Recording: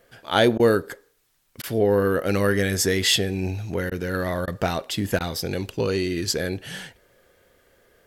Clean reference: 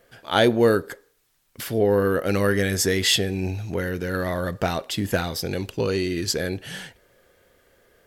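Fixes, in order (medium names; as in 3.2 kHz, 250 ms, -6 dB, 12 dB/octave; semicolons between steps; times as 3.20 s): interpolate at 0.58/1.62/3.90/4.46/5.19 s, 14 ms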